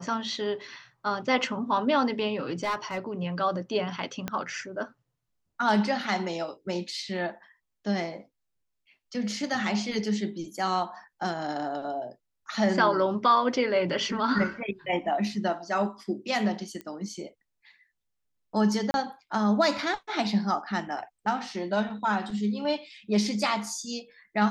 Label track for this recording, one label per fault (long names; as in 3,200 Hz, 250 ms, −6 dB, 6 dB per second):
2.630000	2.980000	clipping −23.5 dBFS
4.280000	4.280000	click −15 dBFS
16.810000	16.810000	click −24 dBFS
18.910000	18.940000	drop-out 31 ms